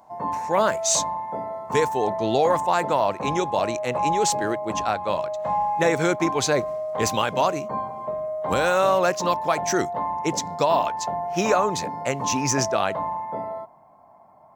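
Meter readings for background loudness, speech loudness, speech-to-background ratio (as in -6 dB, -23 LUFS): -28.5 LUFS, -24.0 LUFS, 4.5 dB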